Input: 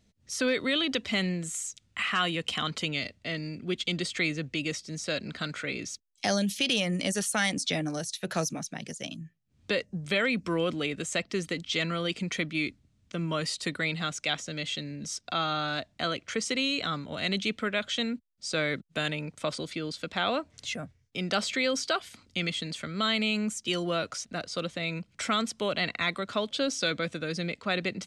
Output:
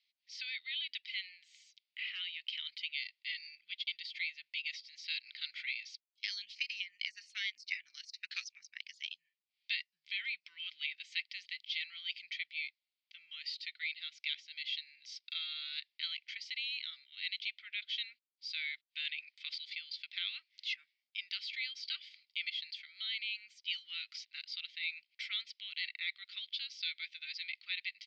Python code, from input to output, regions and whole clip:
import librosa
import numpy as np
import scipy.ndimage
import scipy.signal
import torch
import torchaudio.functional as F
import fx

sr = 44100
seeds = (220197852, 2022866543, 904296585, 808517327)

y = fx.chain(x, sr, fx.filter_lfo_notch(shape='square', hz=2.0, low_hz=240.0, high_hz=3400.0, q=1.2),
    fx.transient(attack_db=11, sustain_db=-11), at=(6.55, 8.9))
y = scipy.signal.sosfilt(scipy.signal.ellip(3, 1.0, 60, [2100.0, 4800.0], 'bandpass', fs=sr, output='sos'), y)
y = fx.rider(y, sr, range_db=4, speed_s=0.5)
y = y * 10.0 ** (-5.0 / 20.0)